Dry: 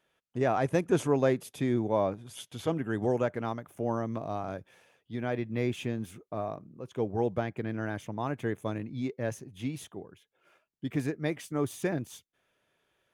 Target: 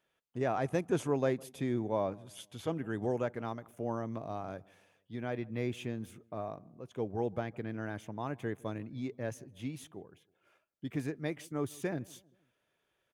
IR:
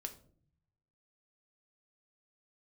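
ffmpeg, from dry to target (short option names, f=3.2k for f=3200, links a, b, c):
-filter_complex "[0:a]asplit=2[a][b];[b]adelay=158,lowpass=f=1.1k:p=1,volume=-23dB,asplit=2[c][d];[d]adelay=158,lowpass=f=1.1k:p=1,volume=0.45,asplit=2[e][f];[f]adelay=158,lowpass=f=1.1k:p=1,volume=0.45[g];[a][c][e][g]amix=inputs=4:normalize=0,volume=-5dB"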